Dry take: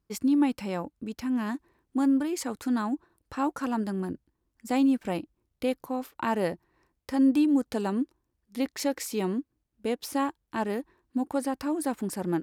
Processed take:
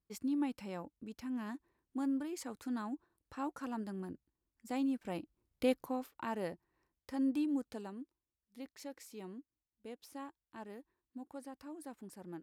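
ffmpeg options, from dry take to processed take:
ffmpeg -i in.wav -af "volume=-3dB,afade=type=in:start_time=5.05:duration=0.67:silence=0.375837,afade=type=out:start_time=5.72:duration=0.43:silence=0.375837,afade=type=out:start_time=7.54:duration=0.41:silence=0.421697" out.wav

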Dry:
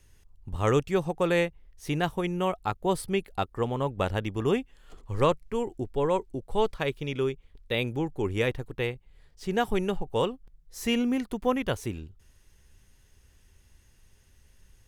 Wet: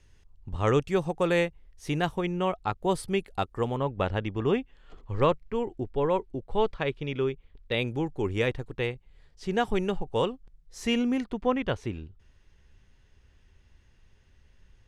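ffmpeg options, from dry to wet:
ffmpeg -i in.wav -af "asetnsamples=nb_out_samples=441:pad=0,asendcmd='0.81 lowpass f 9700;2.18 lowpass f 5400;2.81 lowpass f 10000;3.77 lowpass f 3900;7.72 lowpass f 7400;11.24 lowpass f 3900',lowpass=5800" out.wav

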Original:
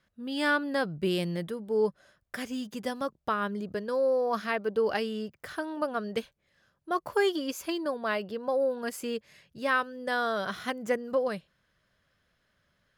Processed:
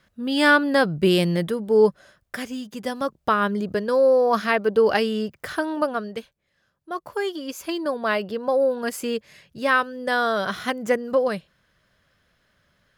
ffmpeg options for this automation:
ffmpeg -i in.wav -af "volume=25.5dB,afade=type=out:start_time=1.84:duration=0.81:silence=0.375837,afade=type=in:start_time=2.65:duration=0.68:silence=0.421697,afade=type=out:start_time=5.74:duration=0.43:silence=0.316228,afade=type=in:start_time=7.36:duration=0.66:silence=0.398107" out.wav

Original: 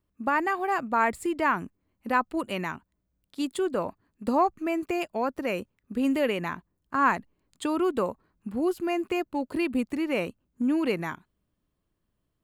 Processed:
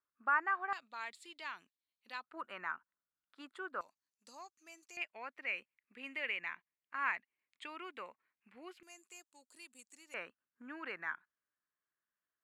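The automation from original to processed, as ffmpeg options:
ffmpeg -i in.wav -af "asetnsamples=nb_out_samples=441:pad=0,asendcmd='0.73 bandpass f 3800;2.24 bandpass f 1400;3.81 bandpass f 6100;4.97 bandpass f 2200;8.83 bandpass f 7400;10.14 bandpass f 1600',bandpass=frequency=1400:width_type=q:width=3.8:csg=0" out.wav

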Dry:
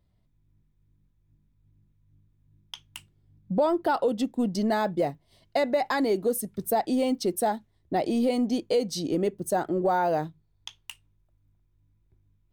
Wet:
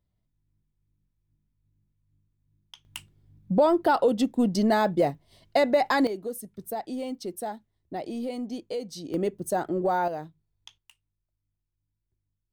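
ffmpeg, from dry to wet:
ffmpeg -i in.wav -af "asetnsamples=nb_out_samples=441:pad=0,asendcmd='2.85 volume volume 3dB;6.07 volume volume -8dB;9.14 volume volume -1dB;10.08 volume volume -8dB;10.78 volume volume -15.5dB',volume=-8dB" out.wav

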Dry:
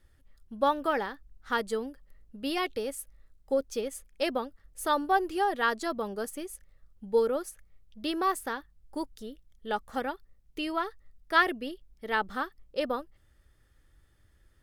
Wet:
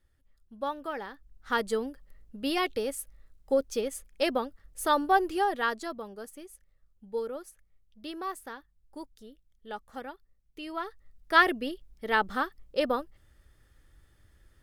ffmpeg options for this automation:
ffmpeg -i in.wav -af "volume=13dB,afade=type=in:start_time=0.98:duration=0.68:silence=0.334965,afade=type=out:start_time=5.23:duration=0.84:silence=0.316228,afade=type=in:start_time=10.61:duration=0.84:silence=0.281838" out.wav

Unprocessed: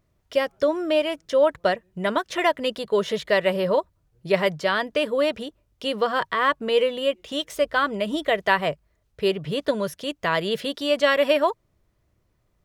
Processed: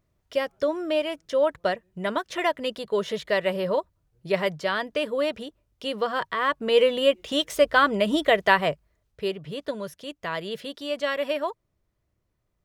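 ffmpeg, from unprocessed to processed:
ffmpeg -i in.wav -af "volume=3dB,afade=type=in:start_time=6.48:duration=0.45:silence=0.473151,afade=type=out:start_time=8.19:duration=1.19:silence=0.298538" out.wav

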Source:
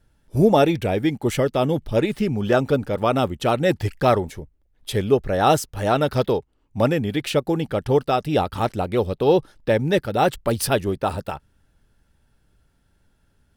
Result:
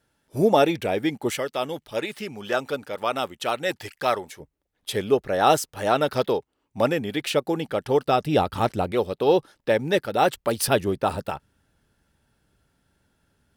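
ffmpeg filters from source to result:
ffmpeg -i in.wav -af "asetnsamples=nb_out_samples=441:pad=0,asendcmd='1.33 highpass f 1100;4.4 highpass f 350;8.06 highpass f 84;8.92 highpass f 340;10.68 highpass f 120',highpass=frequency=360:poles=1" out.wav

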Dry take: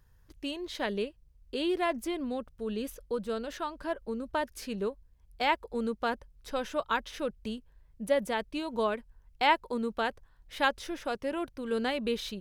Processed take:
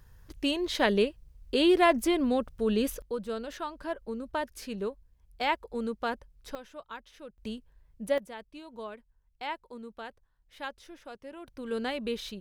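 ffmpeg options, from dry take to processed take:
ffmpeg -i in.wav -af "asetnsamples=nb_out_samples=441:pad=0,asendcmd='3.02 volume volume -1dB;6.55 volume volume -13dB;7.38 volume volume -1dB;8.18 volume volume -11.5dB;11.47 volume volume -2dB',volume=7.5dB" out.wav

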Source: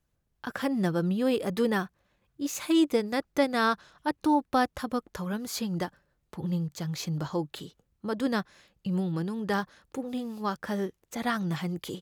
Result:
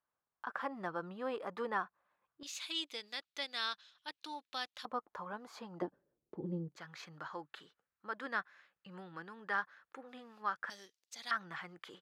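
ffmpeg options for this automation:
ffmpeg -i in.wav -af "asetnsamples=nb_out_samples=441:pad=0,asendcmd='2.43 bandpass f 3600;4.85 bandpass f 980;5.82 bandpass f 370;6.76 bandpass f 1500;10.7 bandpass f 4700;11.31 bandpass f 1500',bandpass=frequency=1100:width_type=q:width=2.1:csg=0" out.wav

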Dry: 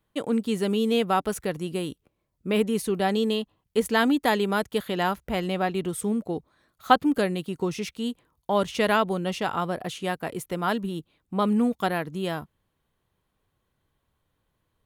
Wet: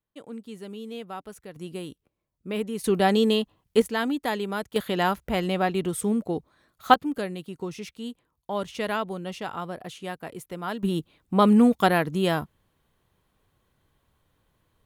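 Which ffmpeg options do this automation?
ffmpeg -i in.wav -af "asetnsamples=nb_out_samples=441:pad=0,asendcmd='1.56 volume volume -6dB;2.84 volume volume 3.5dB;3.82 volume volume -5dB;4.76 volume volume 1.5dB;6.94 volume volume -6dB;10.83 volume volume 5.5dB',volume=-14dB" out.wav

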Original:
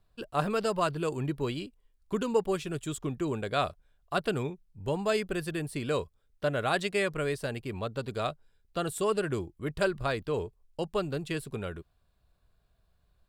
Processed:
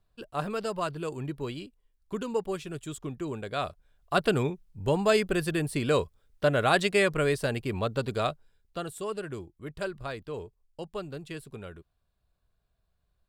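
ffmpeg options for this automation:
ffmpeg -i in.wav -af "volume=5dB,afade=type=in:start_time=3.6:duration=0.64:silence=0.398107,afade=type=out:start_time=8.01:duration=0.92:silence=0.281838" out.wav

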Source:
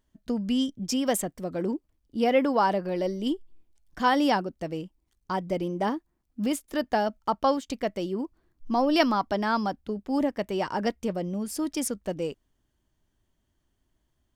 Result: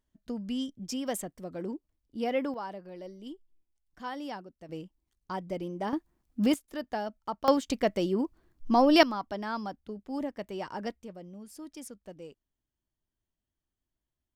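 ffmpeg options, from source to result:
ffmpeg -i in.wav -af "asetnsamples=nb_out_samples=441:pad=0,asendcmd='2.54 volume volume -15.5dB;4.69 volume volume -6.5dB;5.93 volume volume 2dB;6.54 volume volume -8.5dB;7.48 volume volume 2dB;9.03 volume volume -8.5dB;11.02 volume volume -15dB',volume=-7.5dB" out.wav

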